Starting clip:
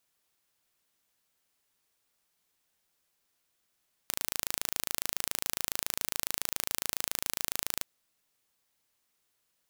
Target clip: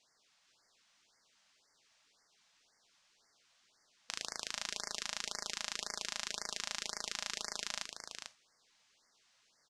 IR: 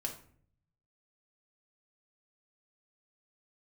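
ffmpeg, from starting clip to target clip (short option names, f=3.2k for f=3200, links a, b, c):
-filter_complex "[0:a]asoftclip=type=tanh:threshold=-14.5dB,lowpass=f=6.2k:w=0.5412,lowpass=f=6.2k:w=1.3066,lowshelf=f=320:g=-10.5,aecho=1:1:446:0.501,asplit=2[a][b];[1:a]atrim=start_sample=2205,atrim=end_sample=3969,highshelf=f=6.4k:g=12[c];[b][c]afir=irnorm=-1:irlink=0,volume=-7.5dB[d];[a][d]amix=inputs=2:normalize=0,afftfilt=real='re*(1-between(b*sr/1024,330*pow(3200/330,0.5+0.5*sin(2*PI*1.9*pts/sr))/1.41,330*pow(3200/330,0.5+0.5*sin(2*PI*1.9*pts/sr))*1.41))':imag='im*(1-between(b*sr/1024,330*pow(3200/330,0.5+0.5*sin(2*PI*1.9*pts/sr))/1.41,330*pow(3200/330,0.5+0.5*sin(2*PI*1.9*pts/sr))*1.41))':win_size=1024:overlap=0.75,volume=7dB"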